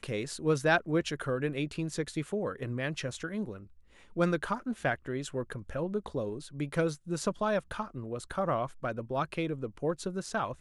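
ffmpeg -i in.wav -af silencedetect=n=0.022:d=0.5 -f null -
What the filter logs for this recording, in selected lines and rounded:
silence_start: 3.51
silence_end: 4.17 | silence_duration: 0.66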